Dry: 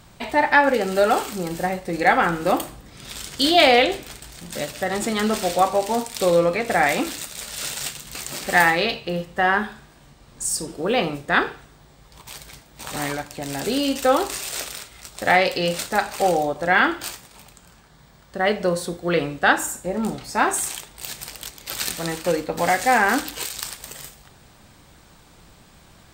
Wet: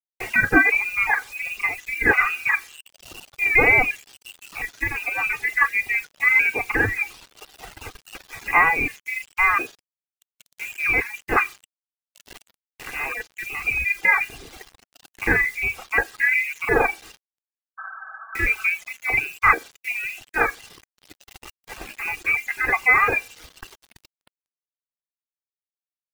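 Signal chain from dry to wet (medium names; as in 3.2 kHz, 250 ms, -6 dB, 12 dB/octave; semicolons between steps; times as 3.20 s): pitch shift switched off and on +6.5 st, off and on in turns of 355 ms; comb 2.5 ms, depth 59%; frequency inversion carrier 2.8 kHz; bass shelf 150 Hz +2.5 dB; bit crusher 6-bit; spectral replace 17.80–18.62 s, 580–1700 Hz after; gate with hold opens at -39 dBFS; reverb removal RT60 1.8 s; trim -1 dB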